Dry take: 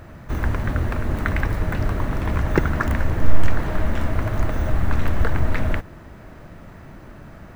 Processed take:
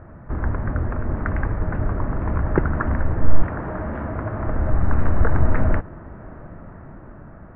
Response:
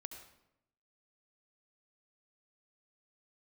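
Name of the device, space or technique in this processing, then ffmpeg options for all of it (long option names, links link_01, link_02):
action camera in a waterproof case: -filter_complex "[0:a]asettb=1/sr,asplit=3[link_01][link_02][link_03];[link_01]atrim=end=3.424[link_04];[link_02]atrim=start=3.42:end=4.47,asetpts=PTS-STARTPTS,afade=type=in:duration=0.004:curve=qsin,afade=type=out:start_time=1.046:duration=0.004:curve=qsin,highpass=frequency=120:poles=1[link_05];[link_03]atrim=start=4.466[link_06];[link_04][link_05]acrossfade=duration=0.004:curve1=hsin:curve2=qsin[link_07];[link_07][link_06]acrossfade=duration=0.004:curve1=qsin:curve2=hsin,lowpass=frequency=1600:width=0.5412,lowpass=frequency=1600:width=1.3066,dynaudnorm=framelen=700:gausssize=5:maxgain=11.5dB,volume=-1dB" -ar 22050 -c:a aac -b:a 48k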